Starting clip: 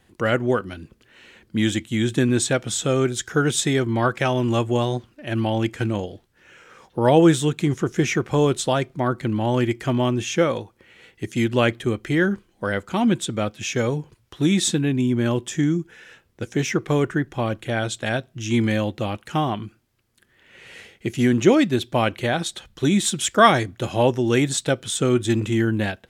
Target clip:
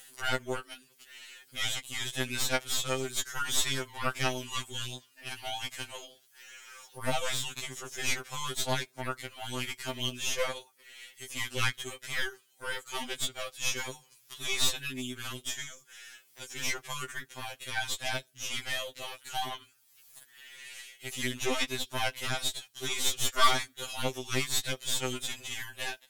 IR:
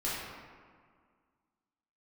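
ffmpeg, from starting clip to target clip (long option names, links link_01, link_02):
-filter_complex "[0:a]acrossover=split=4900[link_01][link_02];[link_02]acompressor=threshold=-45dB:ratio=4:attack=1:release=60[link_03];[link_01][link_03]amix=inputs=2:normalize=0,aderivative,acompressor=mode=upward:threshold=-47dB:ratio=2.5,aeval=exprs='0.178*(cos(1*acos(clip(val(0)/0.178,-1,1)))-cos(1*PI/2))+0.00631*(cos(2*acos(clip(val(0)/0.178,-1,1)))-cos(2*PI/2))+0.0224*(cos(5*acos(clip(val(0)/0.178,-1,1)))-cos(5*PI/2))+0.00316*(cos(7*acos(clip(val(0)/0.178,-1,1)))-cos(7*PI/2))+0.0398*(cos(8*acos(clip(val(0)/0.178,-1,1)))-cos(8*PI/2))':channel_layout=same,afftfilt=real='re*2.45*eq(mod(b,6),0)':imag='im*2.45*eq(mod(b,6),0)':win_size=2048:overlap=0.75,volume=3.5dB"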